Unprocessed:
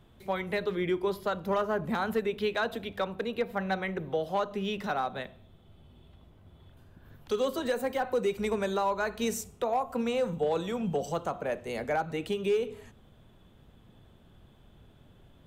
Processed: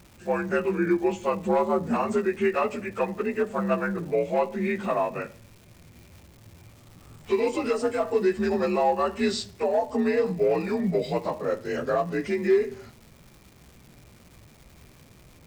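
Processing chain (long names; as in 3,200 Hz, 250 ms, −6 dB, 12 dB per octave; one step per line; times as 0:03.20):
partials spread apart or drawn together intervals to 86%
surface crackle 490 per second −50 dBFS
level +7 dB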